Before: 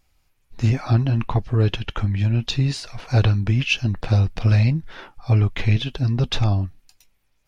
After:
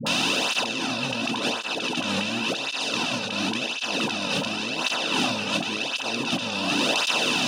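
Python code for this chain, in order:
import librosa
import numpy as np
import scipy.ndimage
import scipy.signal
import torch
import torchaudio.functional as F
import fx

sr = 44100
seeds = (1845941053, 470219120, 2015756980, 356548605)

p1 = fx.bin_compress(x, sr, power=0.2)
p2 = scipy.signal.sosfilt(scipy.signal.butter(4, 210.0, 'highpass', fs=sr, output='sos'), p1)
p3 = fx.high_shelf(p2, sr, hz=5900.0, db=8.0)
p4 = fx.notch(p3, sr, hz=2100.0, q=6.2)
p5 = fx.dispersion(p4, sr, late='highs', ms=66.0, hz=530.0)
p6 = p5 + fx.echo_stepped(p5, sr, ms=132, hz=310.0, octaves=0.7, feedback_pct=70, wet_db=-4, dry=0)
p7 = fx.over_compress(p6, sr, threshold_db=-23.0, ratio=-1.0)
p8 = fx.peak_eq(p7, sr, hz=400.0, db=-9.0, octaves=0.39)
y = fx.flanger_cancel(p8, sr, hz=0.92, depth_ms=3.1)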